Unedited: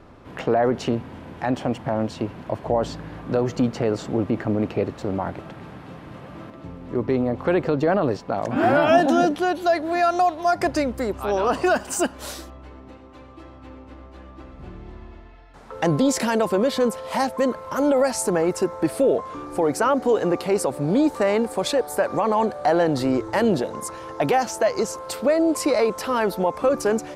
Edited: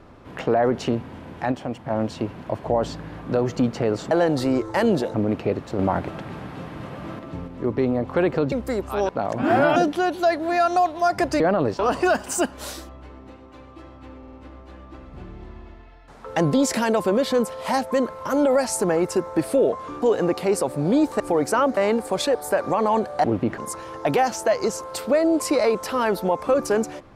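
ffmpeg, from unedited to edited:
-filter_complex "[0:a]asplit=20[a][b][c][d][e][f][g][h][i][j][k][l][m][n][o][p][q][r][s][t];[a]atrim=end=1.522[u];[b]atrim=start=1.518:end=1.902,asetpts=PTS-STARTPTS,volume=-5dB[v];[c]atrim=start=1.898:end=4.112[w];[d]atrim=start=22.698:end=23.732[x];[e]atrim=start=4.448:end=5.102[y];[f]atrim=start=5.098:end=6.792,asetpts=PTS-STARTPTS,volume=4.5dB[z];[g]atrim=start=6.788:end=7.832[aa];[h]atrim=start=10.828:end=11.402[ab];[i]atrim=start=8.218:end=8.892[ac];[j]atrim=start=9.188:end=10.832[ad];[k]atrim=start=7.828:end=8.222[ae];[l]atrim=start=11.398:end=13.842[af];[m]atrim=start=13.788:end=13.842[ag];[n]atrim=start=13.788:end=13.842[ah];[o]atrim=start=13.788:end=19.482[ai];[p]atrim=start=20.048:end=21.232[aj];[q]atrim=start=19.478:end=20.052[ak];[r]atrim=start=21.228:end=22.702[al];[s]atrim=start=4.108:end=4.452[am];[t]atrim=start=23.728[an];[u][v]acrossfade=d=0.004:c1=hsin:c2=hsin[ao];[ao][w]acrossfade=d=0.004:c1=hsin:c2=hsin[ap];[ap][x]acrossfade=d=0.004:c1=hsin:c2=hsin[aq];[aq][y]acrossfade=d=0.004:c1=hsin:c2=hsin[ar];[ar][z]acrossfade=d=0.004:c1=hsin:c2=hsin[as];[as][aa]acrossfade=d=0.004:c1=hsin:c2=hsin[at];[at][ab]acrossfade=d=0.004:c1=hsin:c2=hsin[au];[au][ac]acrossfade=d=0.004:c1=hsin:c2=hsin[av];[av][ad]acrossfade=d=0.004:c1=hsin:c2=hsin[aw];[aw][ae]acrossfade=d=0.004:c1=hsin:c2=hsin[ax];[ax][af]acrossfade=d=0.004:c1=hsin:c2=hsin[ay];[ay][ag]acrossfade=d=0.004:c1=hsin:c2=hsin[az];[az][ah]acrossfade=d=0.004:c1=hsin:c2=hsin[ba];[ba][ai]acrossfade=d=0.004:c1=hsin:c2=hsin[bb];[bb][aj]acrossfade=d=0.004:c1=hsin:c2=hsin[bc];[bc][ak]acrossfade=d=0.004:c1=hsin:c2=hsin[bd];[bd][al]acrossfade=d=0.004:c1=hsin:c2=hsin[be];[be][am]acrossfade=d=0.004:c1=hsin:c2=hsin[bf];[bf][an]acrossfade=d=0.004:c1=hsin:c2=hsin"

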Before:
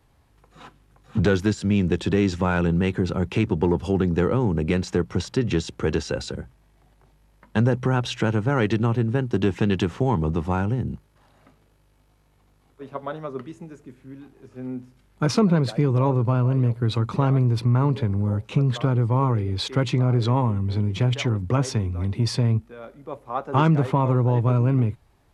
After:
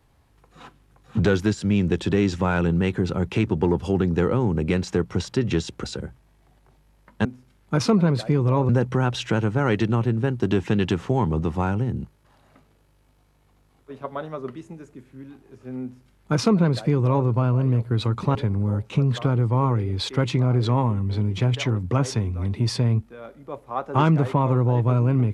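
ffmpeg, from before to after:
-filter_complex "[0:a]asplit=5[a][b][c][d][e];[a]atrim=end=5.842[f];[b]atrim=start=6.188:end=7.602[g];[c]atrim=start=14.738:end=16.182[h];[d]atrim=start=7.598:end=17.262[i];[e]atrim=start=17.938[j];[f][g]acrossfade=d=0.004:c1=hsin:c2=hsin[k];[k][h]acrossfade=d=0.004:c1=hsin:c2=hsin[l];[l][i]acrossfade=d=0.004:c1=hsin:c2=hsin[m];[m][j]acrossfade=d=0.004:c1=hsin:c2=hsin"

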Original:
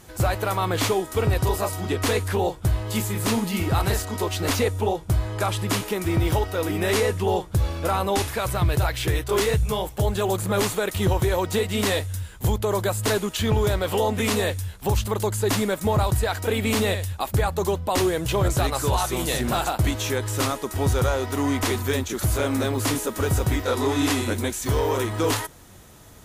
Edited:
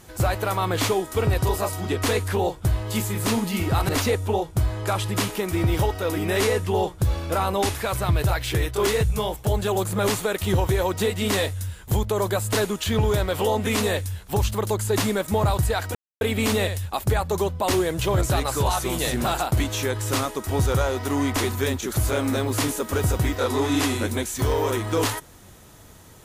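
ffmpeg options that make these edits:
-filter_complex "[0:a]asplit=3[a][b][c];[a]atrim=end=3.892[d];[b]atrim=start=4.418:end=16.48,asetpts=PTS-STARTPTS,afade=t=out:st=12.058:d=0.004:c=hsin,apad=pad_dur=0.26[e];[c]atrim=start=16.48,asetpts=PTS-STARTPTS,afade=t=in:d=0.004:c=hsin[f];[e][f]concat=n=2:v=0:a=1[g];[d][g]acrossfade=d=0.004:c1=hsin:c2=hsin"

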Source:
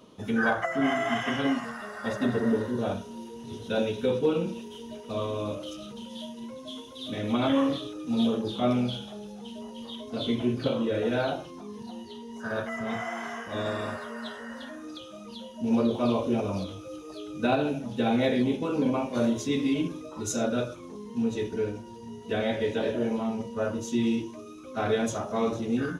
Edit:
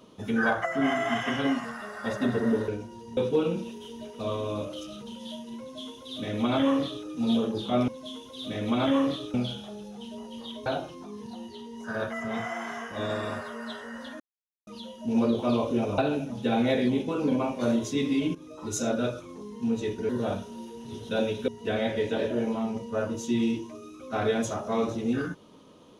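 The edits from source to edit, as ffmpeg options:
-filter_complex "[0:a]asplit=12[a][b][c][d][e][f][g][h][i][j][k][l];[a]atrim=end=2.682[m];[b]atrim=start=21.628:end=22.122[n];[c]atrim=start=4.068:end=8.782[o];[d]atrim=start=6.498:end=7.962[p];[e]atrim=start=8.778:end=10.102[q];[f]atrim=start=11.218:end=14.76,asetpts=PTS-STARTPTS,afade=t=out:st=3.538:d=0.004:c=hsin[r];[g]atrim=start=14.76:end=15.23,asetpts=PTS-STARTPTS,volume=0[s];[h]atrim=start=15.23:end=16.542,asetpts=PTS-STARTPTS,afade=t=in:d=0.004:c=hsin[t];[i]atrim=start=17.518:end=19.89,asetpts=PTS-STARTPTS,afade=t=out:st=2.368:d=0.004:c=hsin:silence=0.223872[u];[j]atrim=start=19.89:end=21.632,asetpts=PTS-STARTPTS,afade=t=in:d=0.29:silence=0.223872[v];[k]atrim=start=2.678:end=4.072[w];[l]atrim=start=22.118[x];[m][n]acrossfade=d=0.004:c1=hsin:c2=hsin[y];[y][o]acrossfade=d=0.004:c1=hsin:c2=hsin[z];[z][p]acrossfade=d=0.004:c1=hsin:c2=hsin[aa];[aa][q]acrossfade=d=0.004:c1=hsin:c2=hsin[ab];[r][s][t]concat=n=3:v=0:a=1[ac];[ab][ac]acrossfade=d=0.004:c1=hsin:c2=hsin[ad];[u][v]concat=n=2:v=0:a=1[ae];[ad][ae]acrossfade=d=0.004:c1=hsin:c2=hsin[af];[af][w]acrossfade=d=0.004:c1=hsin:c2=hsin[ag];[ag][x]acrossfade=d=0.004:c1=hsin:c2=hsin"

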